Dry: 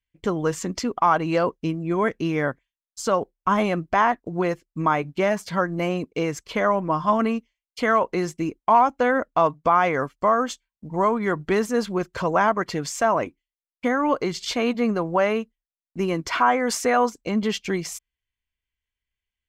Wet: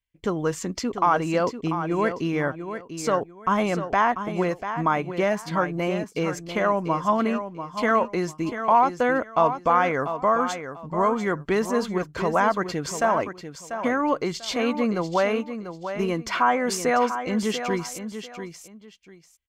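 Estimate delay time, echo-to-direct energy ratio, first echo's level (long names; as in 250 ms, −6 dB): 692 ms, −9.5 dB, −9.5 dB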